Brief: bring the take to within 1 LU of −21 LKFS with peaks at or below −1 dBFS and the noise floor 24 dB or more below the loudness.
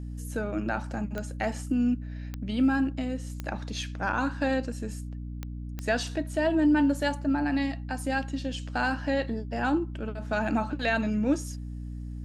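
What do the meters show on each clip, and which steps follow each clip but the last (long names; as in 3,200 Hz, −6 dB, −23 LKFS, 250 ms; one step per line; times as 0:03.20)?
number of clicks 5; mains hum 60 Hz; hum harmonics up to 300 Hz; level of the hum −34 dBFS; integrated loudness −29.5 LKFS; sample peak −14.0 dBFS; target loudness −21.0 LKFS
→ click removal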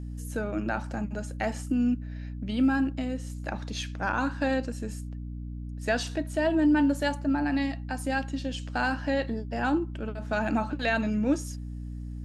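number of clicks 0; mains hum 60 Hz; hum harmonics up to 300 Hz; level of the hum −34 dBFS
→ mains-hum notches 60/120/180/240/300 Hz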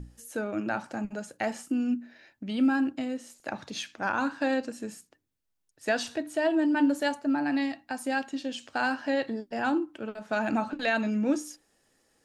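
mains hum none found; integrated loudness −30.0 LKFS; sample peak −14.5 dBFS; target loudness −21.0 LKFS
→ level +9 dB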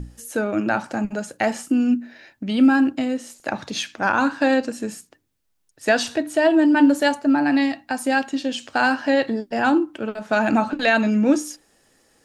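integrated loudness −20.5 LKFS; sample peak −5.5 dBFS; background noise floor −66 dBFS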